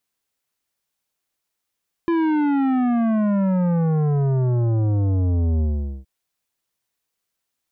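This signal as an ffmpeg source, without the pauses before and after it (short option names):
-f lavfi -i "aevalsrc='0.126*clip((3.97-t)/0.44,0,1)*tanh(3.98*sin(2*PI*340*3.97/log(65/340)*(exp(log(65/340)*t/3.97)-1)))/tanh(3.98)':d=3.97:s=44100"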